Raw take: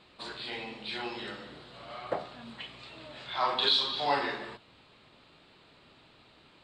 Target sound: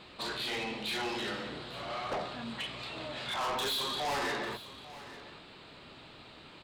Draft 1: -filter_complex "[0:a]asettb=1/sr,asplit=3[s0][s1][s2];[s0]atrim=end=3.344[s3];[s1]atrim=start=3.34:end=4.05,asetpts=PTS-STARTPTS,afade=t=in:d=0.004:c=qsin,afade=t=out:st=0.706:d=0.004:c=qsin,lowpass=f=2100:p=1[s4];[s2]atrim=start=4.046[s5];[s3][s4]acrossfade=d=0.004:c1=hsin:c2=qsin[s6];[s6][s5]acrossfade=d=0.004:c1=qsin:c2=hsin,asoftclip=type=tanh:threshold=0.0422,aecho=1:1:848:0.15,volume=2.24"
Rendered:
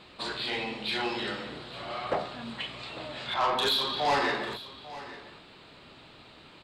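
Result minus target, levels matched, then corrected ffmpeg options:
saturation: distortion -7 dB
-filter_complex "[0:a]asettb=1/sr,asplit=3[s0][s1][s2];[s0]atrim=end=3.344[s3];[s1]atrim=start=3.34:end=4.05,asetpts=PTS-STARTPTS,afade=t=in:d=0.004:c=qsin,afade=t=out:st=0.706:d=0.004:c=qsin,lowpass=f=2100:p=1[s4];[s2]atrim=start=4.046[s5];[s3][s4]acrossfade=d=0.004:c1=hsin:c2=qsin[s6];[s6][s5]acrossfade=d=0.004:c1=qsin:c2=hsin,asoftclip=type=tanh:threshold=0.0126,aecho=1:1:848:0.15,volume=2.24"

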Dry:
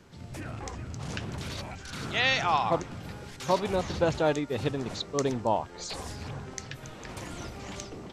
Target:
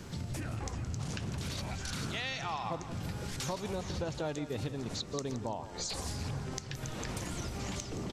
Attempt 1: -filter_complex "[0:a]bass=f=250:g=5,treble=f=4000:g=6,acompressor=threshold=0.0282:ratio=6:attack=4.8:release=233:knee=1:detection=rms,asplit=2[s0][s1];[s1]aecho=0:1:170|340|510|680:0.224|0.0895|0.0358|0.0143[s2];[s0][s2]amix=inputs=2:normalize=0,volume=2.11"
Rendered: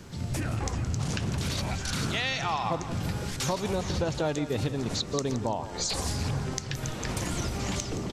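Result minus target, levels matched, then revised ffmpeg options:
compression: peak gain reduction -7.5 dB
-filter_complex "[0:a]bass=f=250:g=5,treble=f=4000:g=6,acompressor=threshold=0.01:ratio=6:attack=4.8:release=233:knee=1:detection=rms,asplit=2[s0][s1];[s1]aecho=0:1:170|340|510|680:0.224|0.0895|0.0358|0.0143[s2];[s0][s2]amix=inputs=2:normalize=0,volume=2.11"

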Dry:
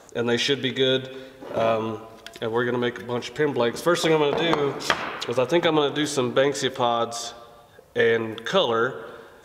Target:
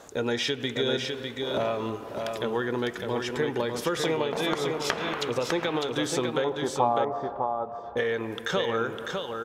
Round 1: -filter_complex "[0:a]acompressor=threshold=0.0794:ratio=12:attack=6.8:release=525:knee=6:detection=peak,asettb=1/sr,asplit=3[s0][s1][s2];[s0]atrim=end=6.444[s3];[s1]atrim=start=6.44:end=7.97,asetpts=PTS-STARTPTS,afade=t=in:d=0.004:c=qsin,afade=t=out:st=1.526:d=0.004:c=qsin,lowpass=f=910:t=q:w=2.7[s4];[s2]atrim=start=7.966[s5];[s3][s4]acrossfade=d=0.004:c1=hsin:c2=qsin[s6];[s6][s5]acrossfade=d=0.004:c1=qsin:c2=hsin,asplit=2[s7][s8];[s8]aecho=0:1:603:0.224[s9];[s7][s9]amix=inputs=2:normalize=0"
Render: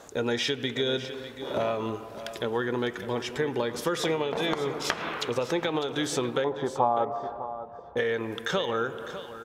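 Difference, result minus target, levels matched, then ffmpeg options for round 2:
echo-to-direct -8 dB
-filter_complex "[0:a]acompressor=threshold=0.0794:ratio=12:attack=6.8:release=525:knee=6:detection=peak,asettb=1/sr,asplit=3[s0][s1][s2];[s0]atrim=end=6.444[s3];[s1]atrim=start=6.44:end=7.97,asetpts=PTS-STARTPTS,afade=t=in:d=0.004:c=qsin,afade=t=out:st=1.526:d=0.004:c=qsin,lowpass=f=910:t=q:w=2.7[s4];[s2]atrim=start=7.966[s5];[s3][s4]acrossfade=d=0.004:c1=hsin:c2=qsin[s6];[s6][s5]acrossfade=d=0.004:c1=qsin:c2=hsin,asplit=2[s7][s8];[s8]aecho=0:1:603:0.562[s9];[s7][s9]amix=inputs=2:normalize=0"

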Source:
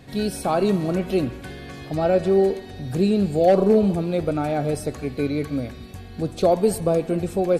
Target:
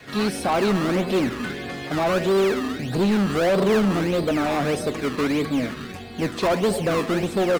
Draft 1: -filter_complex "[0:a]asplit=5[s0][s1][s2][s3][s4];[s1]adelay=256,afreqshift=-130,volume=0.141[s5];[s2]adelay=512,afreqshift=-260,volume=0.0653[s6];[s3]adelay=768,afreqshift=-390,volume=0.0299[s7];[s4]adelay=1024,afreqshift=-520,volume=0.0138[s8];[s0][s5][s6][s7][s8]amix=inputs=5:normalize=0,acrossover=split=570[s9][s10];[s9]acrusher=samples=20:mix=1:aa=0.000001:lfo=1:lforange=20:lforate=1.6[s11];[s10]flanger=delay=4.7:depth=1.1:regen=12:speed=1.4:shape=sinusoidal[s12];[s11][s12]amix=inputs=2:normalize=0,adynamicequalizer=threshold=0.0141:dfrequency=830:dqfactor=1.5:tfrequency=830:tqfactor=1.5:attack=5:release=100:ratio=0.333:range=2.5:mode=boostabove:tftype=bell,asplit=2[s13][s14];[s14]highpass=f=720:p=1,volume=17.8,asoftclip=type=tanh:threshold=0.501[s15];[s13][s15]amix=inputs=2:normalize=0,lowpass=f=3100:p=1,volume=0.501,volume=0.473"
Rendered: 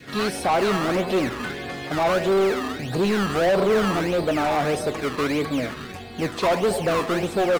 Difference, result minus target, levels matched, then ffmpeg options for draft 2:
1 kHz band +2.5 dB
-filter_complex "[0:a]asplit=5[s0][s1][s2][s3][s4];[s1]adelay=256,afreqshift=-130,volume=0.141[s5];[s2]adelay=512,afreqshift=-260,volume=0.0653[s6];[s3]adelay=768,afreqshift=-390,volume=0.0299[s7];[s4]adelay=1024,afreqshift=-520,volume=0.0138[s8];[s0][s5][s6][s7][s8]amix=inputs=5:normalize=0,acrossover=split=570[s9][s10];[s9]acrusher=samples=20:mix=1:aa=0.000001:lfo=1:lforange=20:lforate=1.6[s11];[s10]flanger=delay=4.7:depth=1.1:regen=12:speed=1.4:shape=sinusoidal[s12];[s11][s12]amix=inputs=2:normalize=0,adynamicequalizer=threshold=0.0141:dfrequency=220:dqfactor=1.5:tfrequency=220:tqfactor=1.5:attack=5:release=100:ratio=0.333:range=2.5:mode=boostabove:tftype=bell,asplit=2[s13][s14];[s14]highpass=f=720:p=1,volume=17.8,asoftclip=type=tanh:threshold=0.501[s15];[s13][s15]amix=inputs=2:normalize=0,lowpass=f=3100:p=1,volume=0.501,volume=0.473"

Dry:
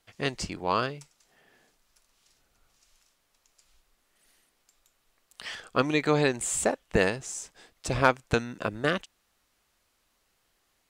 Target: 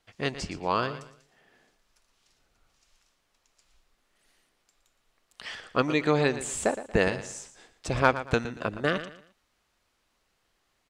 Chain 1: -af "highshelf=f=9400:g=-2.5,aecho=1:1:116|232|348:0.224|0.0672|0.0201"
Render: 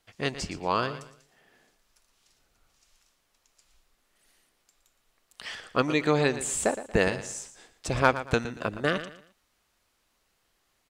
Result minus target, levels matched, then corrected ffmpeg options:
8 kHz band +3.5 dB
-af "highshelf=f=9400:g=-12,aecho=1:1:116|232|348:0.224|0.0672|0.0201"

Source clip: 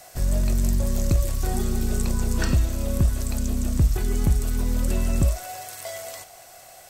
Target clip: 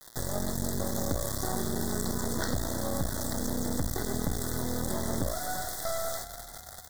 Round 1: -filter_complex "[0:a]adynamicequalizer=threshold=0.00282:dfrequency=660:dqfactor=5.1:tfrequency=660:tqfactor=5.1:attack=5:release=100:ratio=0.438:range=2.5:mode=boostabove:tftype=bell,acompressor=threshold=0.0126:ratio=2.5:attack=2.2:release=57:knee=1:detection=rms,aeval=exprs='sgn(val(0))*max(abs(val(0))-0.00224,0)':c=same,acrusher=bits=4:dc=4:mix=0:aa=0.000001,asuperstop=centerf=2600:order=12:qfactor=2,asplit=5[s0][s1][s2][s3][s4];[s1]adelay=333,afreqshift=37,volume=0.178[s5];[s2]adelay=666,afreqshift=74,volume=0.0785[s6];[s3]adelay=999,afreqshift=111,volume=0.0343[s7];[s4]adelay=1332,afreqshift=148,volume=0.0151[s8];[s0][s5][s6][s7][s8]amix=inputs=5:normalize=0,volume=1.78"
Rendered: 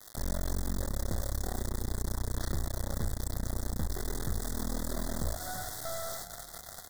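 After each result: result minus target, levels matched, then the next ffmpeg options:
compression: peak gain reduction +6.5 dB; 125 Hz band +3.0 dB
-filter_complex "[0:a]adynamicequalizer=threshold=0.00282:dfrequency=660:dqfactor=5.1:tfrequency=660:tqfactor=5.1:attack=5:release=100:ratio=0.438:range=2.5:mode=boostabove:tftype=bell,acompressor=threshold=0.0355:ratio=2.5:attack=2.2:release=57:knee=1:detection=rms,aeval=exprs='sgn(val(0))*max(abs(val(0))-0.00224,0)':c=same,acrusher=bits=4:dc=4:mix=0:aa=0.000001,asuperstop=centerf=2600:order=12:qfactor=2,asplit=5[s0][s1][s2][s3][s4];[s1]adelay=333,afreqshift=37,volume=0.178[s5];[s2]adelay=666,afreqshift=74,volume=0.0785[s6];[s3]adelay=999,afreqshift=111,volume=0.0343[s7];[s4]adelay=1332,afreqshift=148,volume=0.0151[s8];[s0][s5][s6][s7][s8]amix=inputs=5:normalize=0,volume=1.78"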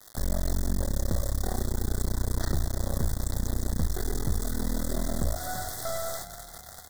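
125 Hz band +3.5 dB
-filter_complex "[0:a]adynamicequalizer=threshold=0.00282:dfrequency=660:dqfactor=5.1:tfrequency=660:tqfactor=5.1:attack=5:release=100:ratio=0.438:range=2.5:mode=boostabove:tftype=bell,highpass=120,acompressor=threshold=0.0355:ratio=2.5:attack=2.2:release=57:knee=1:detection=rms,aeval=exprs='sgn(val(0))*max(abs(val(0))-0.00224,0)':c=same,acrusher=bits=4:dc=4:mix=0:aa=0.000001,asuperstop=centerf=2600:order=12:qfactor=2,asplit=5[s0][s1][s2][s3][s4];[s1]adelay=333,afreqshift=37,volume=0.178[s5];[s2]adelay=666,afreqshift=74,volume=0.0785[s6];[s3]adelay=999,afreqshift=111,volume=0.0343[s7];[s4]adelay=1332,afreqshift=148,volume=0.0151[s8];[s0][s5][s6][s7][s8]amix=inputs=5:normalize=0,volume=1.78"

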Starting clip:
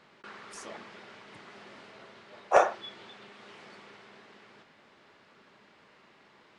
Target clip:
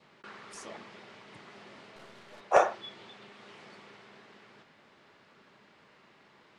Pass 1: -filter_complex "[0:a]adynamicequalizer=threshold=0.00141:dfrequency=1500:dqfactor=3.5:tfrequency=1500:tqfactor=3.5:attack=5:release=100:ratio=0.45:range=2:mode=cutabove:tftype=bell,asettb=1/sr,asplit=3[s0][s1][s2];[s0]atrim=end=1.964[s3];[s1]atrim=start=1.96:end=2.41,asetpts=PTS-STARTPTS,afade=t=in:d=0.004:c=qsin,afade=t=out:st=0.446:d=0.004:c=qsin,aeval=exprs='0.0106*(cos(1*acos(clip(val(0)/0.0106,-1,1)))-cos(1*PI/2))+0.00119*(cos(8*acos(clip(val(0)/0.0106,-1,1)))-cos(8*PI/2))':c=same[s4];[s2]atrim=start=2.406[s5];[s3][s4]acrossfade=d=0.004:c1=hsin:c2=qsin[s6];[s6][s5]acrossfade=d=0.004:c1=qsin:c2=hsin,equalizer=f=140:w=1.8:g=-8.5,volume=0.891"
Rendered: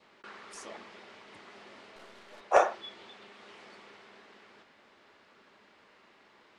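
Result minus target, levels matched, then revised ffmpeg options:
125 Hz band -7.0 dB
-filter_complex "[0:a]adynamicequalizer=threshold=0.00141:dfrequency=1500:dqfactor=3.5:tfrequency=1500:tqfactor=3.5:attack=5:release=100:ratio=0.45:range=2:mode=cutabove:tftype=bell,asettb=1/sr,asplit=3[s0][s1][s2];[s0]atrim=end=1.964[s3];[s1]atrim=start=1.96:end=2.41,asetpts=PTS-STARTPTS,afade=t=in:d=0.004:c=qsin,afade=t=out:st=0.446:d=0.004:c=qsin,aeval=exprs='0.0106*(cos(1*acos(clip(val(0)/0.0106,-1,1)))-cos(1*PI/2))+0.00119*(cos(8*acos(clip(val(0)/0.0106,-1,1)))-cos(8*PI/2))':c=same[s4];[s2]atrim=start=2.406[s5];[s3][s4]acrossfade=d=0.004:c1=hsin:c2=qsin[s6];[s6][s5]acrossfade=d=0.004:c1=qsin:c2=hsin,equalizer=f=140:w=1.8:g=3,volume=0.891"

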